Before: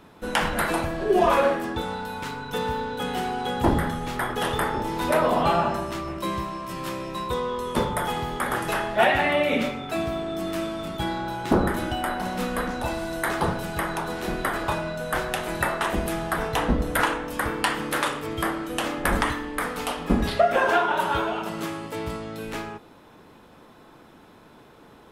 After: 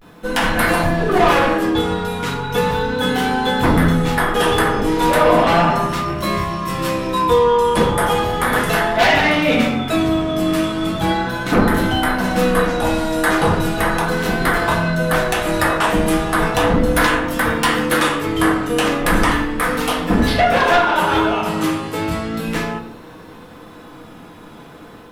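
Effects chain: level rider gain up to 4.5 dB; sine folder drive 8 dB, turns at -3.5 dBFS; word length cut 10-bit, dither triangular; vibrato 0.36 Hz 60 cents; reverberation RT60 0.55 s, pre-delay 4 ms, DRR 0 dB; trim -8.5 dB

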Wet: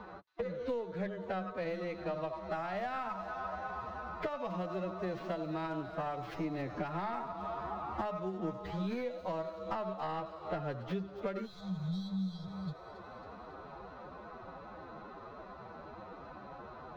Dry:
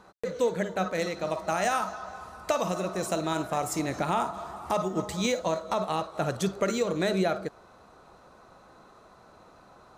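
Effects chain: tracing distortion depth 0.31 ms; spectral replace 6.76–7.52 s, 210–3200 Hz after; compression 6:1, threshold -35 dBFS, peak gain reduction 13.5 dB; time stretch by phase-locked vocoder 1.7×; distance through air 300 m; feedback echo behind a high-pass 273 ms, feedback 59%, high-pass 4 kHz, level -10.5 dB; three bands compressed up and down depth 40%; trim +2 dB

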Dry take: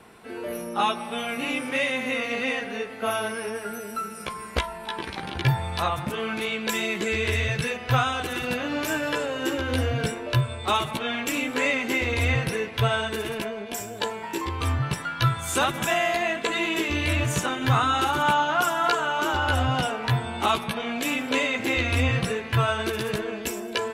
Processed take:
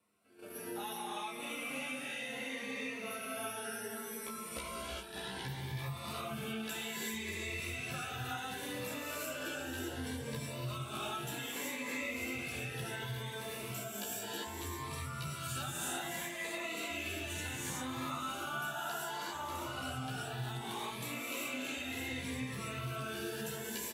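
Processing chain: on a send: delay 592 ms -11.5 dB; on the sum: flange 0.12 Hz, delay 10 ms, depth 7.7 ms, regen -7%; treble shelf 8.9 kHz +12 dB; gated-style reverb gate 420 ms rising, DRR -7 dB; compression 3:1, threshold -30 dBFS, peak gain reduction 13.5 dB; high-pass 120 Hz 6 dB/octave; hum notches 60/120/180/240/300/360/420/480 Hz; gate -35 dBFS, range -15 dB; Shepard-style phaser rising 0.66 Hz; trim -8 dB

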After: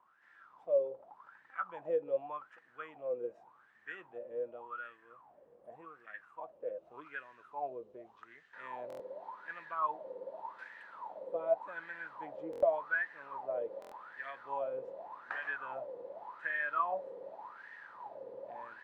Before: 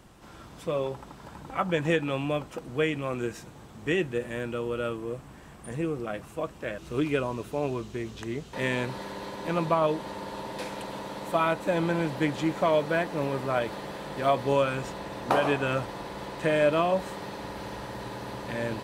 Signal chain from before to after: wah-wah 0.86 Hz 490–1800 Hz, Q 14; buffer glitch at 8.88/12.51/13.80 s, samples 1024, times 4; trim +3.5 dB

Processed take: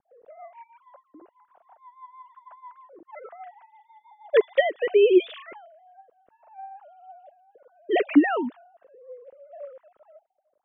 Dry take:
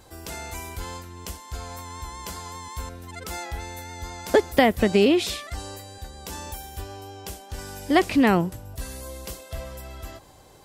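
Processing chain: formants replaced by sine waves; in parallel at -3 dB: compression, threshold -31 dBFS, peak gain reduction 21 dB; on the sum: rotary cabinet horn 6.3 Hz, later 0.7 Hz, at 5.20 s; level-controlled noise filter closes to 320 Hz, open at -20 dBFS

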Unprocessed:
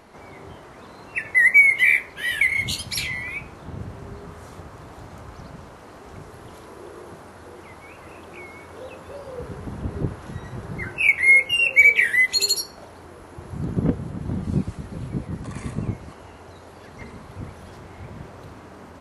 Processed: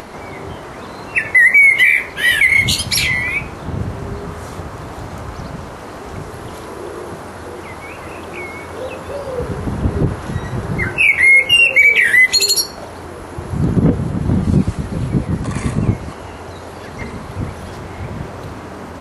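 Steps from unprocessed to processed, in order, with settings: upward compressor, threshold -40 dBFS; loudness maximiser +14.5 dB; trim -2.5 dB

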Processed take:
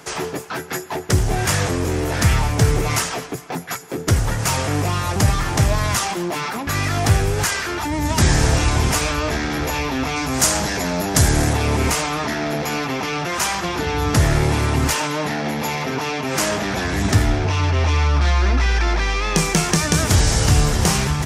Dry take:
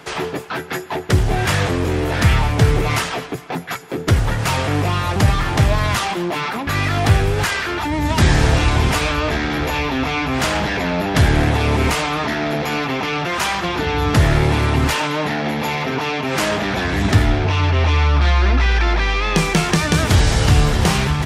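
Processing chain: resonant high shelf 4.7 kHz +6.5 dB, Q 1.5, from 10.16 s +13 dB, from 11.53 s +6 dB; trim -2 dB

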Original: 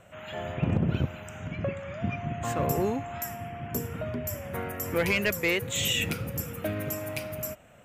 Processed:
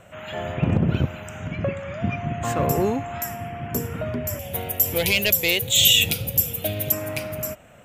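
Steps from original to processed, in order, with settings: 4.39–6.92 s: FFT filter 100 Hz 0 dB, 280 Hz -7 dB, 750 Hz 0 dB, 1.2 kHz -13 dB, 1.9 kHz -7 dB, 3.5 kHz +11 dB, 5.1 kHz +5 dB, 8 kHz +6 dB, 13 kHz +12 dB; trim +5.5 dB

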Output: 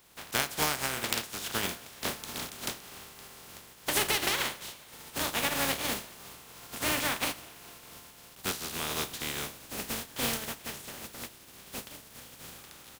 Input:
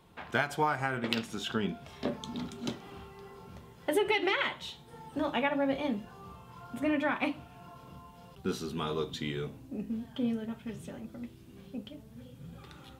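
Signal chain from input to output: spectral contrast reduction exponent 0.27; frequency-shifting echo 206 ms, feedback 65%, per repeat +49 Hz, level -24 dB

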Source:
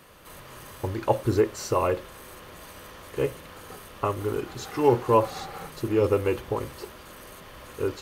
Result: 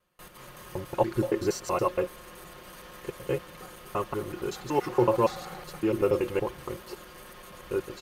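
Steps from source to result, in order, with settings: slices played last to first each 94 ms, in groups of 2; gate with hold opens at -40 dBFS; comb 5.6 ms, depth 55%; trim -3 dB

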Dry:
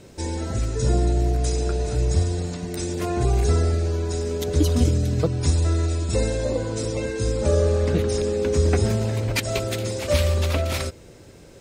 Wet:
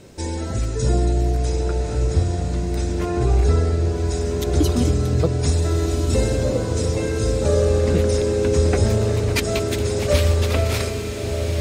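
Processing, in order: 1.44–3.98 s: treble shelf 5.3 kHz -10.5 dB; echo that smears into a reverb 1447 ms, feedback 57%, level -6 dB; trim +1.5 dB

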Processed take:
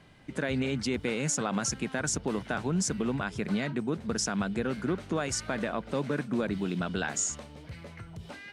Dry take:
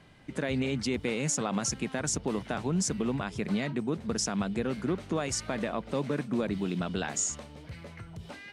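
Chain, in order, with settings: dynamic bell 1.5 kHz, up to +6 dB, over -54 dBFS, Q 4.7

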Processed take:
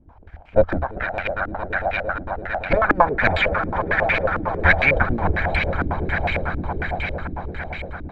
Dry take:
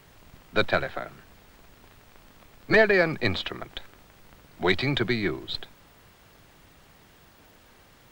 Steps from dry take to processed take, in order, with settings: comb filter that takes the minimum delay 1.3 ms; resonant low shelf 100 Hz +7.5 dB, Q 3; on a send: echo with a slow build-up 113 ms, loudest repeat 8, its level -10.5 dB; on the sum: harmonic-percussive split harmonic -13 dB; step-sequenced low-pass 11 Hz 300–2400 Hz; trim +7.5 dB

